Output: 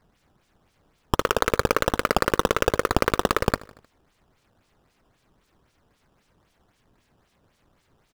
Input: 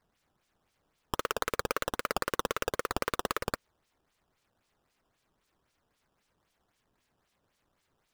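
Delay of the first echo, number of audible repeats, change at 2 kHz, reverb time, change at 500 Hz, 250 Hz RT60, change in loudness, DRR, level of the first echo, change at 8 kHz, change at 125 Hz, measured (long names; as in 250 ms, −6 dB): 77 ms, 3, +9.0 dB, no reverb audible, +11.5 dB, no reverb audible, +10.0 dB, no reverb audible, −22.0 dB, +6.5 dB, +15.0 dB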